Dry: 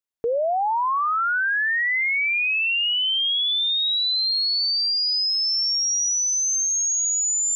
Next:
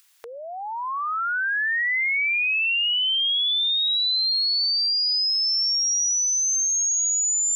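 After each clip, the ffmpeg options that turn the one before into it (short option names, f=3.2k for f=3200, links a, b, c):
-af "highpass=1.4k,acompressor=mode=upward:threshold=-35dB:ratio=2.5"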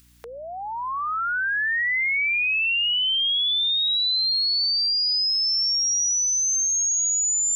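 -af "aeval=exprs='val(0)+0.00158*(sin(2*PI*60*n/s)+sin(2*PI*2*60*n/s)/2+sin(2*PI*3*60*n/s)/3+sin(2*PI*4*60*n/s)/4+sin(2*PI*5*60*n/s)/5)':c=same"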